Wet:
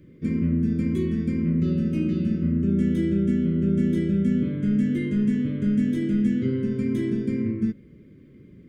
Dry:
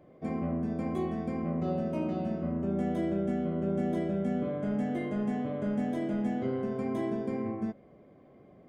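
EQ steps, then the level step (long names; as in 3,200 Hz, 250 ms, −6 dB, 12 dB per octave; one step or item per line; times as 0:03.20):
Butterworth band-reject 790 Hz, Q 0.55
low-shelf EQ 160 Hz +7 dB
+7.5 dB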